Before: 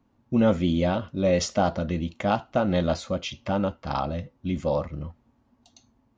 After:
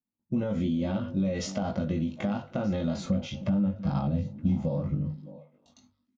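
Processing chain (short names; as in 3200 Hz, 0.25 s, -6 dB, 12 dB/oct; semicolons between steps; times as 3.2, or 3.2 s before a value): gate -59 dBFS, range -31 dB; doubler 20 ms -3 dB; harmonic-percussive split percussive -8 dB; limiter -20 dBFS, peak gain reduction 9 dB; 3.05–5.07 low shelf 350 Hz +11 dB; compressor, threshold -29 dBFS, peak gain reduction 13 dB; bell 180 Hz +8 dB 1.1 oct; notches 50/100/150 Hz; delay with a stepping band-pass 0.307 s, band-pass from 260 Hz, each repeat 1.4 oct, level -11.5 dB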